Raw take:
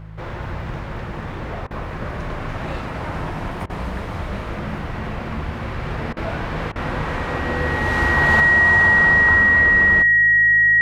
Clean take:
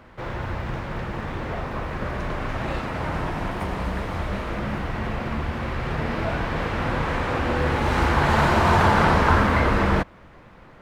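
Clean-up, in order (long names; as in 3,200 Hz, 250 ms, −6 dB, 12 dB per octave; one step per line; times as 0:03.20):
hum removal 53.2 Hz, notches 3
notch filter 1,900 Hz, Q 30
repair the gap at 0:01.67/0:03.66/0:06.13/0:06.72, 36 ms
level 0 dB, from 0:08.40 +5.5 dB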